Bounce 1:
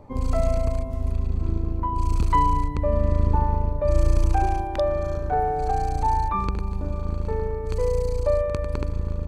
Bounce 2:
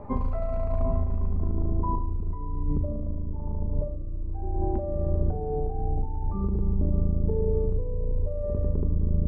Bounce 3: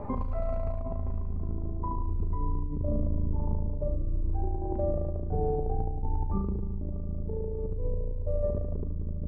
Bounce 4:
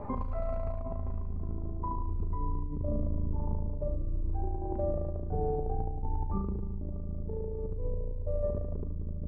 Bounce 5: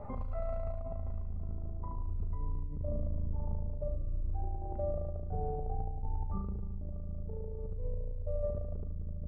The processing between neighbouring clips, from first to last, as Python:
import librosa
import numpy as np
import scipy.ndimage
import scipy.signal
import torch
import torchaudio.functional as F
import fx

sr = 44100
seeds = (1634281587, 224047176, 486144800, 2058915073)

y1 = fx.over_compress(x, sr, threshold_db=-27.0, ratio=-1.0)
y1 = fx.filter_sweep_lowpass(y1, sr, from_hz=1600.0, to_hz=360.0, start_s=0.66, end_s=2.71, q=1.0)
y1 = fx.room_shoebox(y1, sr, seeds[0], volume_m3=1900.0, walls='furnished', distance_m=1.3)
y2 = fx.over_compress(y1, sr, threshold_db=-29.0, ratio=-1.0)
y3 = fx.dynamic_eq(y2, sr, hz=1300.0, q=0.87, threshold_db=-50.0, ratio=4.0, max_db=3)
y3 = F.gain(torch.from_numpy(y3), -3.0).numpy()
y4 = y3 + 0.49 * np.pad(y3, (int(1.5 * sr / 1000.0), 0))[:len(y3)]
y4 = F.gain(torch.from_numpy(y4), -6.0).numpy()